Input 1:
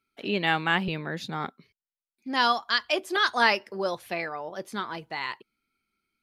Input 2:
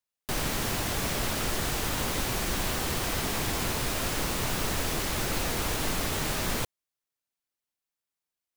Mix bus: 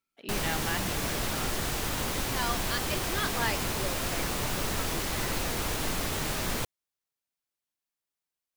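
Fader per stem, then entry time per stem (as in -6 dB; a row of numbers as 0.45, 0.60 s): -10.0, -1.5 dB; 0.00, 0.00 s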